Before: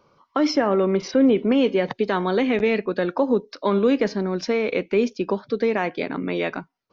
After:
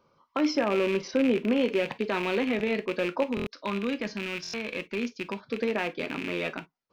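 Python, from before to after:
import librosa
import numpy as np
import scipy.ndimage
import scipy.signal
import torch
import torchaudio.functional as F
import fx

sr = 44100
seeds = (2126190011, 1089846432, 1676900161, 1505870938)

y = fx.rattle_buzz(x, sr, strikes_db=-32.0, level_db=-16.0)
y = fx.peak_eq(y, sr, hz=460.0, db=-8.0, octaves=1.5, at=(3.23, 5.43))
y = fx.rev_gated(y, sr, seeds[0], gate_ms=80, shape='falling', drr_db=8.5)
y = fx.buffer_glitch(y, sr, at_s=(3.35, 4.42), block=1024, repeats=4)
y = y * librosa.db_to_amplitude(-7.0)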